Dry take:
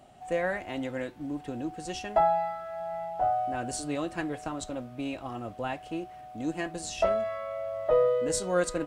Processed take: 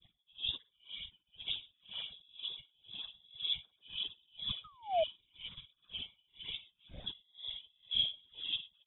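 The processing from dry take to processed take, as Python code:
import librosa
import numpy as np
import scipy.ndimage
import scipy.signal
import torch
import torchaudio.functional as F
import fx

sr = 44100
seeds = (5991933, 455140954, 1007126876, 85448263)

p1 = fx.octave_mirror(x, sr, pivot_hz=400.0)
p2 = fx.high_shelf(p1, sr, hz=2300.0, db=6.5)
p3 = p2 + fx.echo_single(p2, sr, ms=1136, db=-3.5, dry=0)
p4 = fx.granulator(p3, sr, seeds[0], grain_ms=100.0, per_s=20.0, spray_ms=100.0, spread_st=0)
p5 = 10.0 ** (-23.5 / 20.0) * np.tanh(p4 / 10.0 ** (-23.5 / 20.0))
p6 = p4 + F.gain(torch.from_numpy(p5), -4.0).numpy()
p7 = fx.freq_invert(p6, sr, carrier_hz=3600)
p8 = fx.tilt_eq(p7, sr, slope=-4.0)
p9 = fx.whisperise(p8, sr, seeds[1])
p10 = fx.spec_paint(p9, sr, seeds[2], shape='fall', start_s=4.64, length_s=0.4, low_hz=610.0, high_hz=1300.0, level_db=-26.0)
p11 = p10 * 10.0 ** (-35 * (0.5 - 0.5 * np.cos(2.0 * np.pi * 2.0 * np.arange(len(p10)) / sr)) / 20.0)
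y = F.gain(torch.from_numpy(p11), -2.0).numpy()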